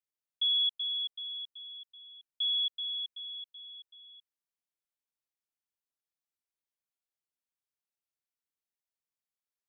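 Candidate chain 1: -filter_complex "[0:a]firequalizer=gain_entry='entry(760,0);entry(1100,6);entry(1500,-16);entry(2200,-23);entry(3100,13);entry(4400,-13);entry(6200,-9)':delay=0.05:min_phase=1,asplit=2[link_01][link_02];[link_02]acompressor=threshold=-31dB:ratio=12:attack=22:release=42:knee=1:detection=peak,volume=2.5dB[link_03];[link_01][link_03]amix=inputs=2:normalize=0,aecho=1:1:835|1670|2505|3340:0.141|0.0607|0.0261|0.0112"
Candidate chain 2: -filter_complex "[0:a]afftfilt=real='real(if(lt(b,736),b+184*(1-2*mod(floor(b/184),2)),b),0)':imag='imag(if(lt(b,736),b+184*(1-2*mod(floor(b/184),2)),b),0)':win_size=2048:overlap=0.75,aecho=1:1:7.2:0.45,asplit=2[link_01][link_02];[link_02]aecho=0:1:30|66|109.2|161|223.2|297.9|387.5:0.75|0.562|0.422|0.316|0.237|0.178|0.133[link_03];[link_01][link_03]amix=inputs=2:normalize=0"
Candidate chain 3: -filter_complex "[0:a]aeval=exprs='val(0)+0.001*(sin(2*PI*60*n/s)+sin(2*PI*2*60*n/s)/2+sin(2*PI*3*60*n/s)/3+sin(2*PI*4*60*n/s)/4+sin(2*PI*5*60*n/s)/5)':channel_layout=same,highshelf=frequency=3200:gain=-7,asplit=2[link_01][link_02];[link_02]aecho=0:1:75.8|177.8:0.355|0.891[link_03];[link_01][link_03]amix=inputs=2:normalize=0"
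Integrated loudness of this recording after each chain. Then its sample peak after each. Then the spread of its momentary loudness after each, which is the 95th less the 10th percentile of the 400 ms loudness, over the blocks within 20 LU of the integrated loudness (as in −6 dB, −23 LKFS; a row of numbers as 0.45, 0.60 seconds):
−20.5, −26.0, −32.0 LKFS; −10.0, −17.5, −23.5 dBFS; 16, 21, 20 LU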